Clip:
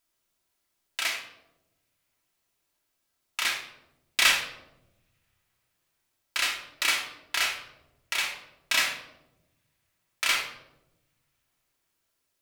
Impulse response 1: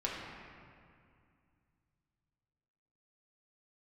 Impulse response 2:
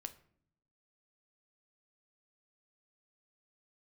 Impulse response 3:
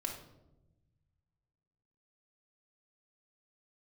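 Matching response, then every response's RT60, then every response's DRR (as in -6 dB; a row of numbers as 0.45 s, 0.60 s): 3; 2.3 s, 0.60 s, 1.0 s; -5.0 dB, 8.0 dB, -0.5 dB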